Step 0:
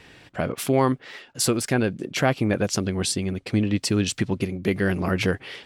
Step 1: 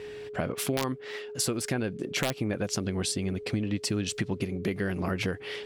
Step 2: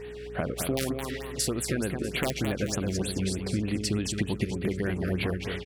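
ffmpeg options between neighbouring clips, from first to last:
-af "aeval=exprs='(mod(2.99*val(0)+1,2)-1)/2.99':c=same,aeval=exprs='val(0)+0.0126*sin(2*PI*420*n/s)':c=same,acompressor=threshold=0.0447:ratio=4"
-filter_complex "[0:a]aeval=exprs='val(0)+0.00447*(sin(2*PI*60*n/s)+sin(2*PI*2*60*n/s)/2+sin(2*PI*3*60*n/s)/3+sin(2*PI*4*60*n/s)/4+sin(2*PI*5*60*n/s)/5)':c=same,asplit=2[s0][s1];[s1]aecho=0:1:216|432|648|864|1080:0.501|0.216|0.0927|0.0398|0.0171[s2];[s0][s2]amix=inputs=2:normalize=0,afftfilt=real='re*(1-between(b*sr/1024,840*pow(6700/840,0.5+0.5*sin(2*PI*3.3*pts/sr))/1.41,840*pow(6700/840,0.5+0.5*sin(2*PI*3.3*pts/sr))*1.41))':imag='im*(1-between(b*sr/1024,840*pow(6700/840,0.5+0.5*sin(2*PI*3.3*pts/sr))/1.41,840*pow(6700/840,0.5+0.5*sin(2*PI*3.3*pts/sr))*1.41))':win_size=1024:overlap=0.75"

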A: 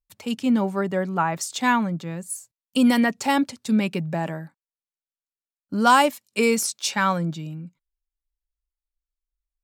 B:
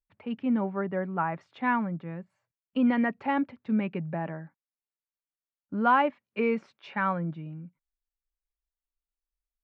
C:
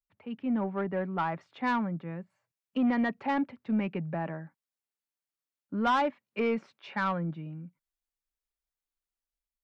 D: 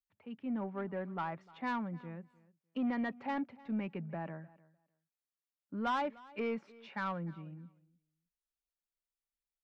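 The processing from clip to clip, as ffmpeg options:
-af "lowpass=f=2300:w=0.5412,lowpass=f=2300:w=1.3066,volume=0.501"
-filter_complex "[0:a]acrossover=split=110[s0][s1];[s1]dynaudnorm=f=190:g=5:m=2[s2];[s0][s2]amix=inputs=2:normalize=0,asoftclip=type=tanh:threshold=0.188,volume=0.501"
-af "aecho=1:1:302|604:0.0794|0.0119,volume=0.422"

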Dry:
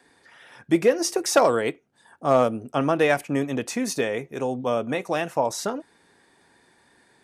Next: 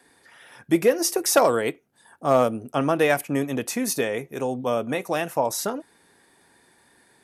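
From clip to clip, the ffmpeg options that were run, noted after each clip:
-af "equalizer=f=12000:w=1.5:g=13"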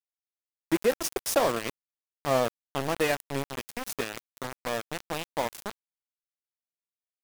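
-af "equalizer=f=1400:w=3.5:g=-5.5,aeval=exprs='val(0)*gte(abs(val(0)),0.1)':c=same,volume=0.531"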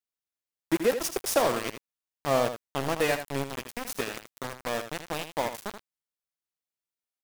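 -af "aecho=1:1:80:0.335"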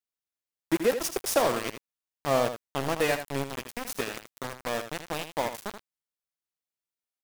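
-af anull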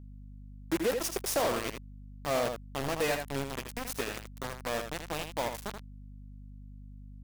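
-af "aeval=exprs='val(0)+0.00501*(sin(2*PI*50*n/s)+sin(2*PI*2*50*n/s)/2+sin(2*PI*3*50*n/s)/3+sin(2*PI*4*50*n/s)/4+sin(2*PI*5*50*n/s)/5)':c=same,asoftclip=type=tanh:threshold=0.0708"

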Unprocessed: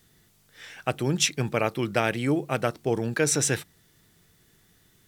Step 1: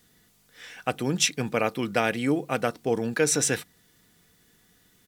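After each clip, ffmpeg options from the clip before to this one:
-af "lowshelf=f=66:g=-7,aecho=1:1:4.1:0.34"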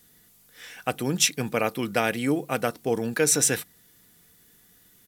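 -af "equalizer=f=13000:t=o:w=0.92:g=10"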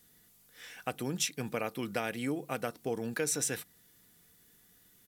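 -af "acompressor=threshold=0.0447:ratio=2,volume=0.531"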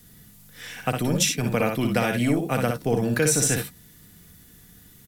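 -filter_complex "[0:a]acrossover=split=210|1300|4600[s0][s1][s2][s3];[s0]aeval=exprs='0.0224*sin(PI/2*2.24*val(0)/0.0224)':c=same[s4];[s4][s1][s2][s3]amix=inputs=4:normalize=0,aecho=1:1:59|74:0.562|0.224,volume=2.82"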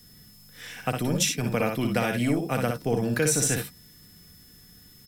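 -af "aeval=exprs='val(0)+0.00224*sin(2*PI*5200*n/s)':c=same,volume=0.75"

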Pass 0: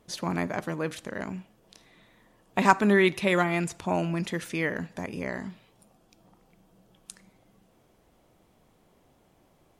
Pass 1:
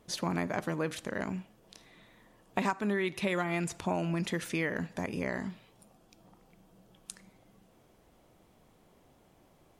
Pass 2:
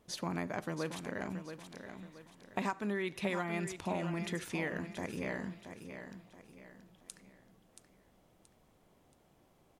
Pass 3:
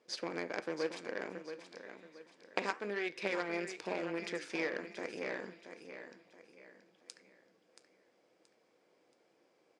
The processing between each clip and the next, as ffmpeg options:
-af "acompressor=threshold=0.0447:ratio=8"
-af "aecho=1:1:677|1354|2031|2708:0.355|0.131|0.0486|0.018,volume=0.562"
-af "flanger=delay=7.8:depth=9.5:regen=-73:speed=0.98:shape=sinusoidal,aeval=exprs='0.0562*(cos(1*acos(clip(val(0)/0.0562,-1,1)))-cos(1*PI/2))+0.0158*(cos(3*acos(clip(val(0)/0.0562,-1,1)))-cos(3*PI/2))+0.00355*(cos(5*acos(clip(val(0)/0.0562,-1,1)))-cos(5*PI/2))+0.000447*(cos(7*acos(clip(val(0)/0.0562,-1,1)))-cos(7*PI/2))+0.00224*(cos(8*acos(clip(val(0)/0.0562,-1,1)))-cos(8*PI/2))':c=same,highpass=290,equalizer=f=330:t=q:w=4:g=6,equalizer=f=490:t=q:w=4:g=10,equalizer=f=1600:t=q:w=4:g=6,equalizer=f=2300:t=q:w=4:g=8,equalizer=f=4900:t=q:w=4:g=10,lowpass=f=8500:w=0.5412,lowpass=f=8500:w=1.3066,volume=2"

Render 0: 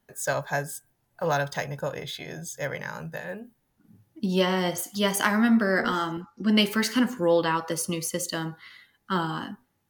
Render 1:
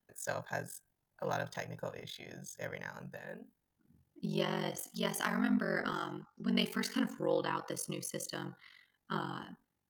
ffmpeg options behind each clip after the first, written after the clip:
-af "aeval=exprs='val(0)*sin(2*PI*23*n/s)':c=same,volume=0.398"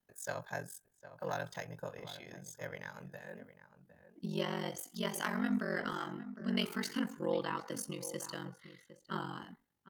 -filter_complex "[0:a]asplit=2[s0][s1];[s1]adelay=758,volume=0.224,highshelf=f=4000:g=-17.1[s2];[s0][s2]amix=inputs=2:normalize=0,volume=0.794"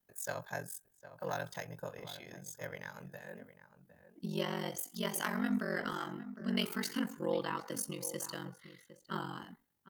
-af "highshelf=f=11000:g=10"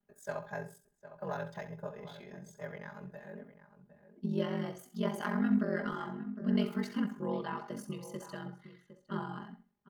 -af "lowpass=f=1100:p=1,aecho=1:1:4.9:0.93,aecho=1:1:67|134|201:0.251|0.0578|0.0133"

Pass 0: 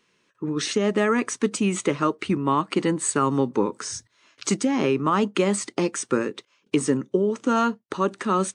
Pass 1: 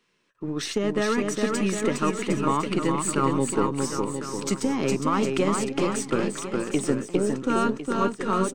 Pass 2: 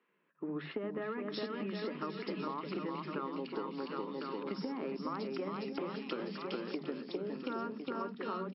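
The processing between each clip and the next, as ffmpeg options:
-filter_complex "[0:a]aeval=exprs='if(lt(val(0),0),0.708*val(0),val(0))':c=same,bandreject=f=6500:w=17,asplit=2[s0][s1];[s1]aecho=0:1:410|758.5|1055|1307|1521:0.631|0.398|0.251|0.158|0.1[s2];[s0][s2]amix=inputs=2:normalize=0,volume=0.794"
-filter_complex "[0:a]acrossover=split=200|2500[s0][s1][s2];[s0]adelay=70[s3];[s2]adelay=730[s4];[s3][s1][s4]amix=inputs=3:normalize=0,afftfilt=real='re*between(b*sr/4096,150,5500)':imag='im*between(b*sr/4096,150,5500)':win_size=4096:overlap=0.75,acompressor=threshold=0.0282:ratio=10,volume=0.631"

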